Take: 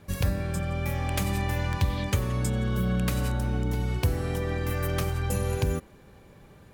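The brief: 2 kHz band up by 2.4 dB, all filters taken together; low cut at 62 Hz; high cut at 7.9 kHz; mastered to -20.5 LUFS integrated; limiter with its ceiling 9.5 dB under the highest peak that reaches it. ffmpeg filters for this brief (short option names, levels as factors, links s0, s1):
-af "highpass=62,lowpass=7900,equalizer=f=2000:t=o:g=3,volume=3.76,alimiter=limit=0.266:level=0:latency=1"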